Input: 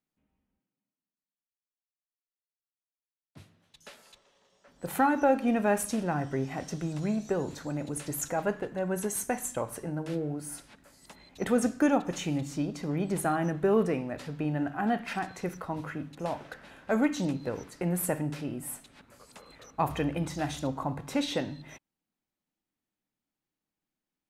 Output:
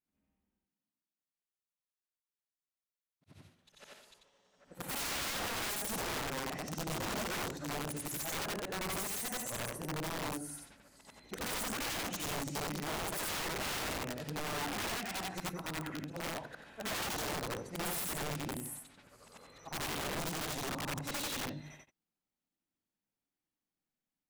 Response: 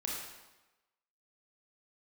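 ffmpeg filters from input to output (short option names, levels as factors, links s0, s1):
-af "afftfilt=real='re':imag='-im':win_size=8192:overlap=0.75,aeval=exprs='(mod(42.2*val(0)+1,2)-1)/42.2':c=same"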